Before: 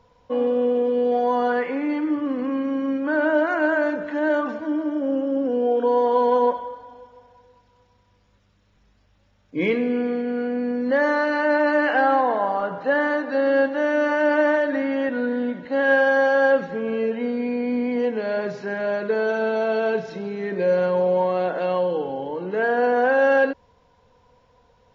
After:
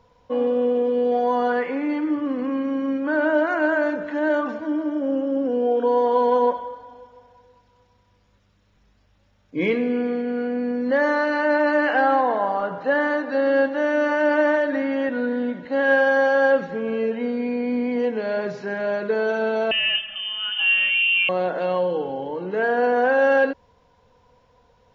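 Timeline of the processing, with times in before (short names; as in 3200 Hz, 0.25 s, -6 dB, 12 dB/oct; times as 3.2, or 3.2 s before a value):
19.71–21.29 inverted band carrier 3300 Hz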